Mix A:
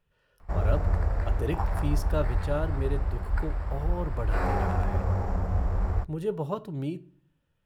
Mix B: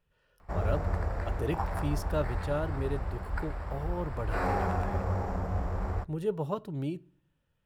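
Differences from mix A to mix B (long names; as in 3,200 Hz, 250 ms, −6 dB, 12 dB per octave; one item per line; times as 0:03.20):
speech: send −7.0 dB
background: add low-shelf EQ 73 Hz −10.5 dB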